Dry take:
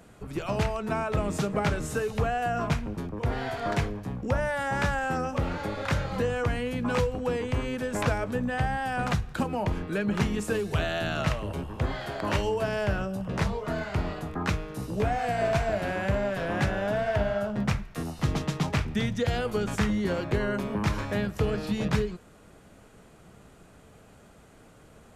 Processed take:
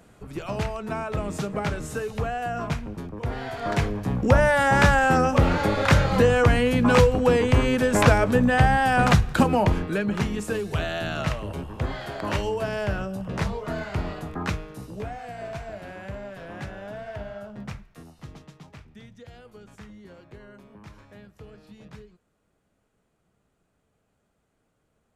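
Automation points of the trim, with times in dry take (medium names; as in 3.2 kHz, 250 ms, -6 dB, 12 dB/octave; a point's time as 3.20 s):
3.50 s -1 dB
4.19 s +9.5 dB
9.53 s +9.5 dB
10.17 s +0.5 dB
14.45 s +0.5 dB
15.23 s -9.5 dB
17.76 s -9.5 dB
18.59 s -19 dB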